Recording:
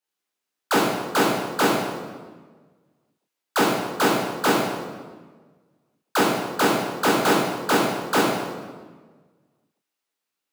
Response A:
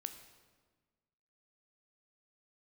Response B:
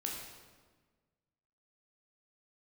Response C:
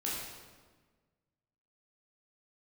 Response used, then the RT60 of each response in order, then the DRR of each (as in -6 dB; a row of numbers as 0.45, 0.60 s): C; 1.4, 1.4, 1.4 s; 7.5, -1.5, -6.5 dB